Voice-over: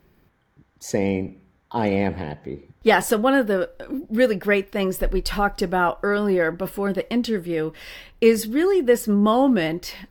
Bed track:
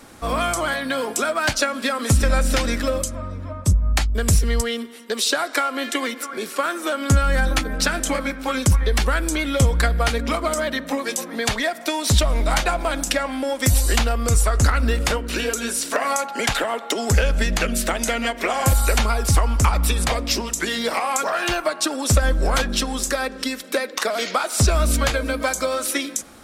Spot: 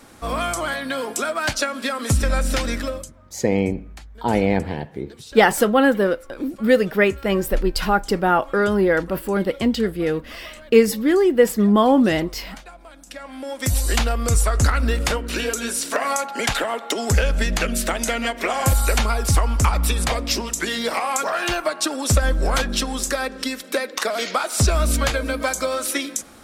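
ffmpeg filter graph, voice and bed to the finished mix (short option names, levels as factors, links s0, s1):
-filter_complex "[0:a]adelay=2500,volume=1.33[s0];[1:a]volume=8.41,afade=t=out:st=2.78:d=0.35:silence=0.112202,afade=t=in:st=13.06:d=0.97:silence=0.0944061[s1];[s0][s1]amix=inputs=2:normalize=0"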